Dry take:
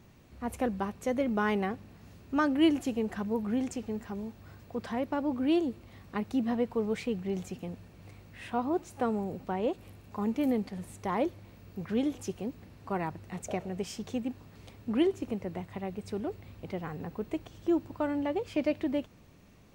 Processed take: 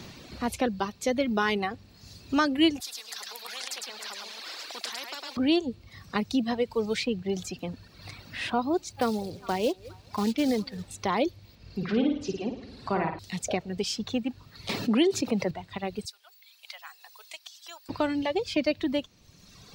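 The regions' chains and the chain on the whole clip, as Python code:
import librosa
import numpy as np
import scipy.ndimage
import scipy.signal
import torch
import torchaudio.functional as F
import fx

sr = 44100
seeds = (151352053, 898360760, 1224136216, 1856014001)

y = fx.chain(x, sr, fx.highpass(hz=560.0, slope=24),
    fx.echo_single(ms=105, db=-4.5),
    fx.spectral_comp(ratio=4.0), at=(2.8, 5.37))
y = fx.chain(y, sr, fx.lowpass(hz=4100.0, slope=12),
    fx.echo_stepped(ms=204, hz=420.0, octaves=1.4, feedback_pct=70, wet_db=-11.5),
    fx.quant_companded(bits=6), at=(8.89, 10.91))
y = fx.chain(y, sr, fx.env_lowpass_down(base_hz=2200.0, full_db=-29.5),
    fx.high_shelf(hz=5300.0, db=-9.5),
    fx.room_flutter(wall_m=9.3, rt60_s=0.99), at=(11.55, 13.19))
y = fx.chain(y, sr, fx.highpass(hz=140.0, slope=24),
    fx.notch(hz=1500.0, q=18.0),
    fx.env_flatten(amount_pct=50), at=(14.69, 15.51))
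y = fx.chain(y, sr, fx.highpass(hz=670.0, slope=24),
    fx.differentiator(), at=(16.05, 17.89))
y = fx.dereverb_blind(y, sr, rt60_s=1.8)
y = fx.peak_eq(y, sr, hz=4400.0, db=14.5, octaves=1.2)
y = fx.band_squash(y, sr, depth_pct=40)
y = F.gain(torch.from_numpy(y), 4.0).numpy()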